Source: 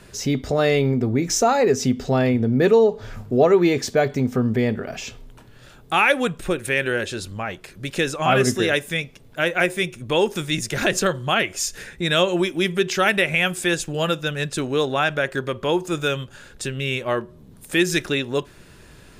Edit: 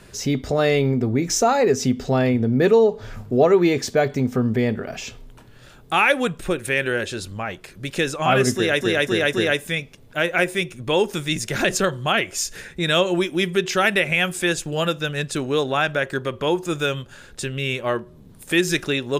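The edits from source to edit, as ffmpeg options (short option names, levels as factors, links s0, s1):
-filter_complex "[0:a]asplit=4[s0][s1][s2][s3];[s0]atrim=end=8.812[s4];[s1]atrim=start=8.548:end=8.812[s5];[s2]atrim=start=8.548:end=8.812[s6];[s3]atrim=start=8.548[s7];[s4][s5]acrossfade=d=0.004:c1=hsin:c2=hsin[s8];[s8][s6]acrossfade=d=0.004:c1=hsin:c2=hsin[s9];[s9][s7]acrossfade=d=0.004:c1=hsin:c2=hsin"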